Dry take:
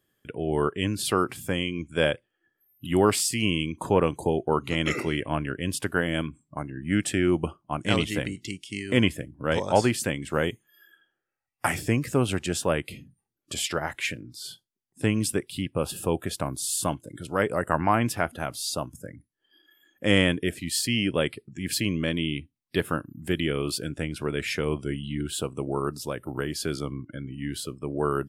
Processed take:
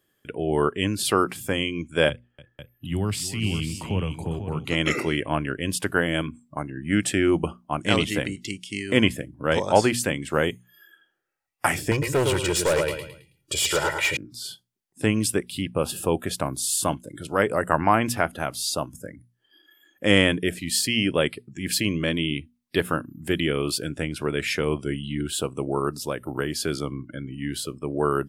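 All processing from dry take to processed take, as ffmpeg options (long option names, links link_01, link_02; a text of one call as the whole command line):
ffmpeg -i in.wav -filter_complex "[0:a]asettb=1/sr,asplit=3[link_01][link_02][link_03];[link_01]atrim=end=2.094[link_04];[link_02]atrim=start=2.09:end=4.65,asetpts=PTS-STARTPTS,afade=type=in:duration=0.004:curve=qsin,afade=type=out:start_time=2.556:duration=0.004:curve=qsin,bass=frequency=250:gain=5,treble=frequency=4000:gain=-9,acrossover=split=170|3000[link_05][link_06][link_07];[link_06]acompressor=threshold=-45dB:ratio=2:attack=3.2:release=140:knee=2.83:detection=peak[link_08];[link_05][link_08][link_07]amix=inputs=3:normalize=0,aecho=1:1:294|498:0.178|0.355,atrim=end_sample=112896[link_09];[link_03]atrim=start=4.646[link_10];[link_04][link_09]acrossfade=duration=0.004:curve1=hsin:curve2=qsin[link_11];[link_11][link_10]acrossfade=duration=0.004:curve1=qsin:curve2=hsin,asettb=1/sr,asplit=3[link_12][link_13][link_14];[link_12]atrim=end=11.914[link_15];[link_13]atrim=start=11.91:end=14.17,asetpts=PTS-STARTPTS,afade=type=in:duration=0.004:curve=qsin,afade=type=out:start_time=2.256:duration=0.004:curve=qsin,aecho=1:1:2.1:0.97,atrim=end_sample=99666,aecho=1:1:108|216|324|432:0.473|0.161|0.0547|0.0186,atrim=end_sample=99666,volume=20.5dB,asoftclip=hard,volume=-20.5dB[link_16];[link_14]atrim=start=14.166[link_17];[link_15][link_16]acrossfade=duration=0.004:curve1=hsin:curve2=qsin[link_18];[link_18][link_17]acrossfade=duration=0.004:curve1=qsin:curve2=hsin,lowshelf=frequency=170:gain=-3.5,bandreject=frequency=60:width_type=h:width=6,bandreject=frequency=120:width_type=h:width=6,bandreject=frequency=180:width_type=h:width=6,bandreject=frequency=240:width_type=h:width=6,volume=3.5dB" out.wav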